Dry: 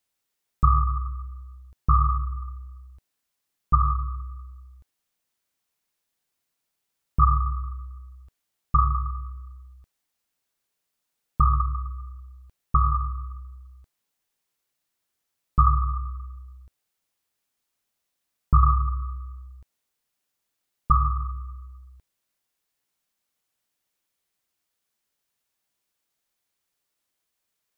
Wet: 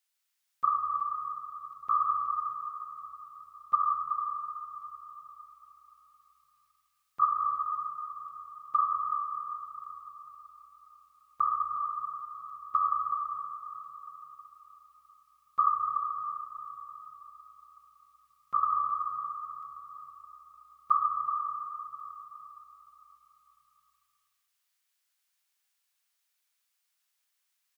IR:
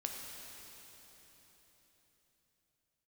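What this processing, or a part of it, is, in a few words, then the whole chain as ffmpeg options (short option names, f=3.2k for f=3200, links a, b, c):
cave: -filter_complex "[0:a]highpass=1.2k,aecho=1:1:374:0.355[a];[1:a]atrim=start_sample=2205[b];[a][b]afir=irnorm=-1:irlink=0,volume=1dB"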